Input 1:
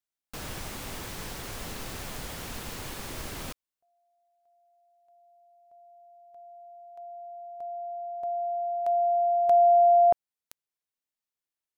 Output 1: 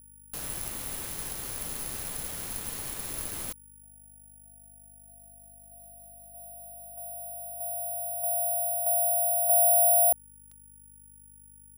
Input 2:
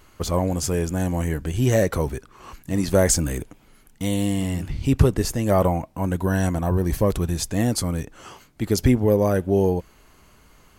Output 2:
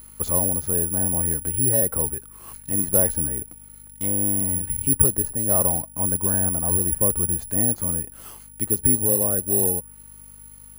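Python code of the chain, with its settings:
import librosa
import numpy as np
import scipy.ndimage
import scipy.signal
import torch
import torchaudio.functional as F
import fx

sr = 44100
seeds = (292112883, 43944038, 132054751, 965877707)

p1 = fx.env_lowpass_down(x, sr, base_hz=1500.0, full_db=-20.5)
p2 = fx.rider(p1, sr, range_db=4, speed_s=0.5)
p3 = p1 + (p2 * librosa.db_to_amplitude(2.0))
p4 = fx.add_hum(p3, sr, base_hz=50, snr_db=22)
p5 = fx.quant_companded(p4, sr, bits=8)
p6 = (np.kron(p5[::4], np.eye(4)[0]) * 4)[:len(p5)]
y = p6 * librosa.db_to_amplitude(-13.5)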